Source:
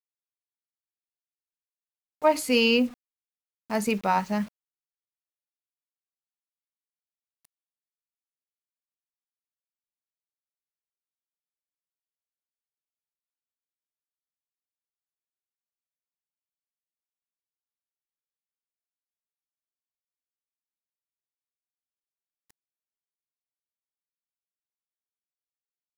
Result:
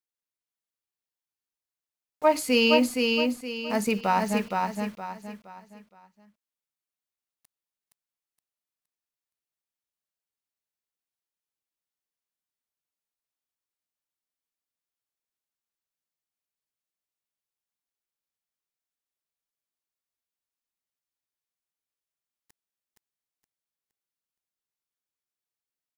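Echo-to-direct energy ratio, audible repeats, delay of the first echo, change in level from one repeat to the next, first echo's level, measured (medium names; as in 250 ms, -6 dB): -3.0 dB, 4, 468 ms, -9.5 dB, -3.5 dB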